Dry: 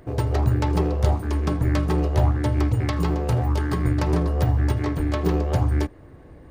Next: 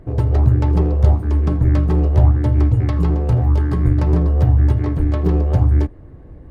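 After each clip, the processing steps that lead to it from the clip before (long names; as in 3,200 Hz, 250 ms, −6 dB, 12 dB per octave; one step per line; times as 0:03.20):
spectral tilt −2.5 dB per octave
level −1.5 dB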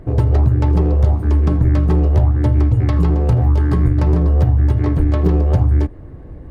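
downward compressor, threshold −14 dBFS, peak gain reduction 7.5 dB
level +4.5 dB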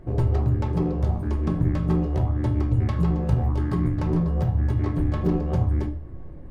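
tuned comb filter 560 Hz, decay 0.58 s, mix 60%
rectangular room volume 230 cubic metres, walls furnished, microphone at 0.96 metres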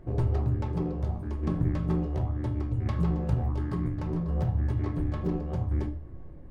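shaped tremolo saw down 0.7 Hz, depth 40%
highs frequency-modulated by the lows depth 0.16 ms
level −4 dB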